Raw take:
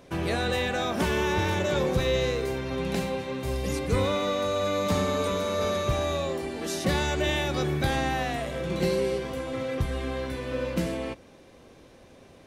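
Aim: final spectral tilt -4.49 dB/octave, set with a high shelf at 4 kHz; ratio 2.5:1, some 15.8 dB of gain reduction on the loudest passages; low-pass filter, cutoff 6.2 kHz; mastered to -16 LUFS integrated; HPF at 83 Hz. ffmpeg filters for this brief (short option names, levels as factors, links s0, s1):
-af "highpass=83,lowpass=6200,highshelf=f=4000:g=-3.5,acompressor=threshold=0.00447:ratio=2.5,volume=21.1"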